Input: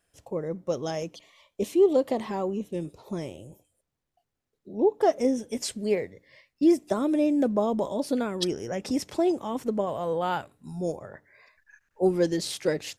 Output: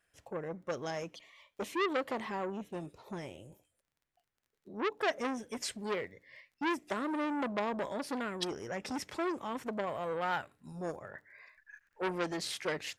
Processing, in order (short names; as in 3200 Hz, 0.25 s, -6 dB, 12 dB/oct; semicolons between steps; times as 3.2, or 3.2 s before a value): bell 1800 Hz +9.5 dB 1.6 oct; crackle 26/s -52 dBFS; core saturation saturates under 1900 Hz; gain -7.5 dB